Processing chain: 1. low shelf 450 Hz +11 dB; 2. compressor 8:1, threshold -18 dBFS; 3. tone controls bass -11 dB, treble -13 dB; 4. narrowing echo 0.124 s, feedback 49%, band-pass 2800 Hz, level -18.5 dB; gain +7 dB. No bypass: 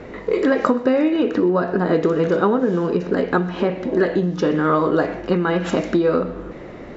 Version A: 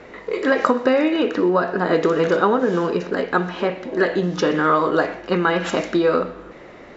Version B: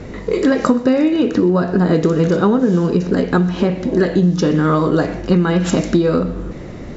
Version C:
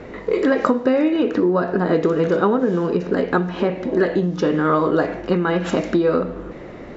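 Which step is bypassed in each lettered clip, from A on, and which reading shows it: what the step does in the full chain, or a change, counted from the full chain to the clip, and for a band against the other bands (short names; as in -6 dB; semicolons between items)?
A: 1, 125 Hz band -6.5 dB; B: 3, 125 Hz band +7.5 dB; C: 4, echo-to-direct -20.0 dB to none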